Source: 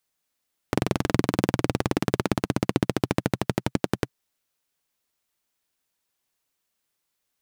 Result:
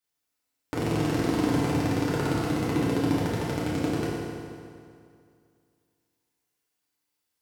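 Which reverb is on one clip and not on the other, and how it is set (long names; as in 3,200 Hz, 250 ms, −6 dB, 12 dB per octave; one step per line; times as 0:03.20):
feedback delay network reverb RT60 2.3 s, low-frequency decay 1×, high-frequency decay 0.8×, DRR −8.5 dB
level −10.5 dB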